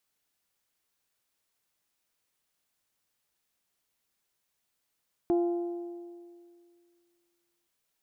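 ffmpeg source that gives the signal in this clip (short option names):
-f lavfi -i "aevalsrc='0.0841*pow(10,-3*t/2.21)*sin(2*PI*346*t)+0.0251*pow(10,-3*t/1.795)*sin(2*PI*692*t)+0.0075*pow(10,-3*t/1.7)*sin(2*PI*830.4*t)+0.00224*pow(10,-3*t/1.589)*sin(2*PI*1038*t)+0.000668*pow(10,-3*t/1.458)*sin(2*PI*1384*t)':d=2.37:s=44100"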